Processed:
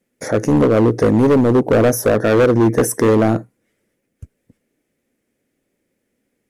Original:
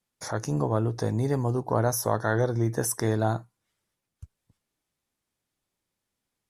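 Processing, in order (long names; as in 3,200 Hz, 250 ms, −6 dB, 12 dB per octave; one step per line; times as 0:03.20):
octave-band graphic EQ 250/500/1,000/2,000/4,000 Hz +12/+12/−9/+9/−7 dB
hard clipping −15.5 dBFS, distortion −8 dB
level +7 dB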